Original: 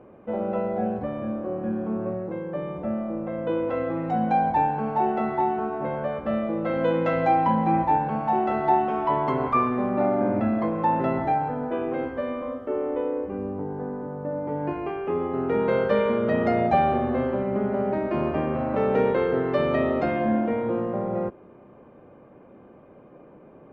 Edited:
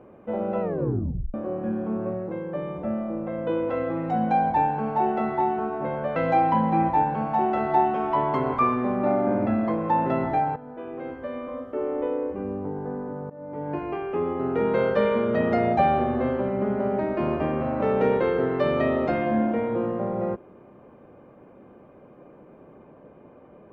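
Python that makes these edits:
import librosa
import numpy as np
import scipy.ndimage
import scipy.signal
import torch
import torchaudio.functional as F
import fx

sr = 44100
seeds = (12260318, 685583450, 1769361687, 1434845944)

y = fx.edit(x, sr, fx.tape_stop(start_s=0.61, length_s=0.73),
    fx.cut(start_s=6.16, length_s=0.94),
    fx.fade_in_from(start_s=11.5, length_s=1.43, floor_db=-14.0),
    fx.fade_in_from(start_s=14.24, length_s=0.72, curve='qsin', floor_db=-19.0), tone=tone)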